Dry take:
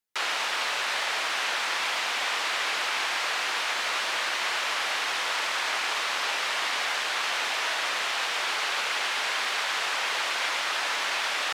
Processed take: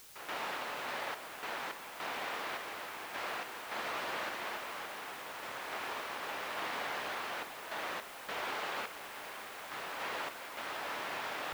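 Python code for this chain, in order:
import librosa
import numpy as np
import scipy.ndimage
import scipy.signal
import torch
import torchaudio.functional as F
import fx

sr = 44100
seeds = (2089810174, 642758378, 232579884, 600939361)

p1 = fx.tilt_eq(x, sr, slope=-4.5)
p2 = p1 + fx.echo_single(p1, sr, ms=273, db=-9.0, dry=0)
p3 = fx.tremolo_random(p2, sr, seeds[0], hz=3.5, depth_pct=70)
p4 = fx.quant_dither(p3, sr, seeds[1], bits=8, dither='triangular')
y = p4 * 10.0 ** (-7.0 / 20.0)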